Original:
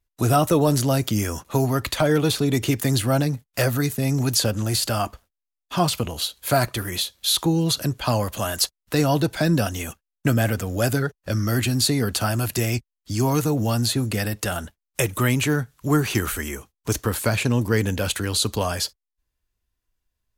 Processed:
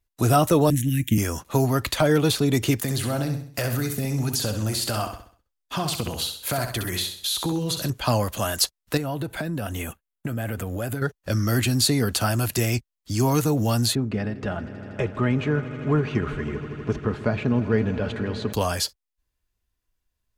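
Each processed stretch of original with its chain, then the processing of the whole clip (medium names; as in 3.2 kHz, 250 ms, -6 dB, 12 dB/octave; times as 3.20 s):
0.70–1.18 s: Chebyshev band-stop 320–1700 Hz, order 5 + transient shaper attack +9 dB, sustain -1 dB + static phaser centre 2 kHz, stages 4
2.79–7.90 s: compression 5:1, threshold -22 dBFS + feedback delay 65 ms, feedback 41%, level -7.5 dB
8.97–11.02 s: peaking EQ 5.4 kHz -12.5 dB + compression 10:1, threshold -24 dBFS
13.95–18.53 s: tape spacing loss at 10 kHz 38 dB + comb 4.8 ms, depth 34% + echo with a slow build-up 80 ms, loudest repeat 5, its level -18 dB
whole clip: none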